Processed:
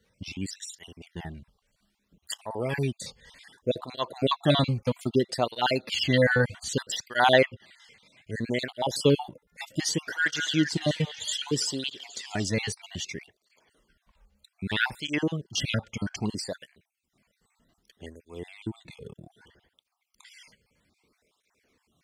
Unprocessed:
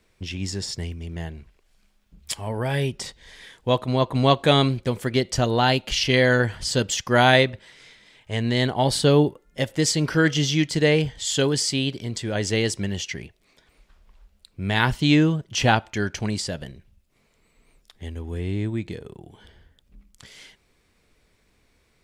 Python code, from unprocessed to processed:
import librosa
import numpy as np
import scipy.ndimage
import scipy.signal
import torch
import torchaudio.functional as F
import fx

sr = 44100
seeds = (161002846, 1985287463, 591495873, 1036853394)

y = fx.spec_dropout(x, sr, seeds[0], share_pct=43)
y = fx.echo_stepped(y, sr, ms=204, hz=1200.0, octaves=0.7, feedback_pct=70, wet_db=-5, at=(10.05, 12.43), fade=0.02)
y = fx.flanger_cancel(y, sr, hz=0.63, depth_ms=3.2)